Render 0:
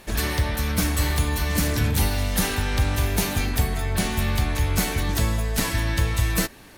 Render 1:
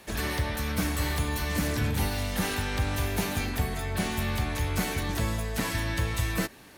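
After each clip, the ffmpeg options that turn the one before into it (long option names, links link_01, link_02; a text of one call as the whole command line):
ffmpeg -i in.wav -filter_complex "[0:a]highpass=frequency=80:poles=1,acrossover=split=270|440|2900[link_01][link_02][link_03][link_04];[link_04]alimiter=limit=-22dB:level=0:latency=1:release=138[link_05];[link_01][link_02][link_03][link_05]amix=inputs=4:normalize=0,volume=-3.5dB" out.wav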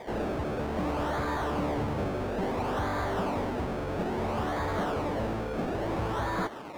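ffmpeg -i in.wav -filter_complex "[0:a]acrusher=samples=31:mix=1:aa=0.000001:lfo=1:lforange=31:lforate=0.59,asplit=2[link_01][link_02];[link_02]highpass=frequency=720:poles=1,volume=29dB,asoftclip=type=tanh:threshold=-16dB[link_03];[link_01][link_03]amix=inputs=2:normalize=0,lowpass=frequency=1300:poles=1,volume=-6dB,volume=-5.5dB" out.wav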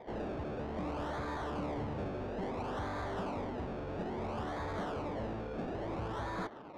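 ffmpeg -i in.wav -af "adynamicsmooth=sensitivity=6:basefreq=1300,volume=-7.5dB" out.wav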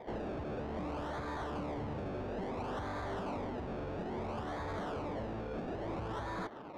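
ffmpeg -i in.wav -af "alimiter=level_in=11dB:limit=-24dB:level=0:latency=1:release=182,volume=-11dB,volume=2dB" out.wav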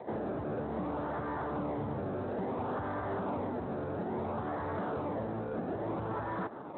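ffmpeg -i in.wav -filter_complex "[0:a]acrossover=split=2200[link_01][link_02];[link_02]acrusher=samples=15:mix=1:aa=0.000001[link_03];[link_01][link_03]amix=inputs=2:normalize=0,volume=4dB" -ar 8000 -c:a libspeex -b:a 24k out.spx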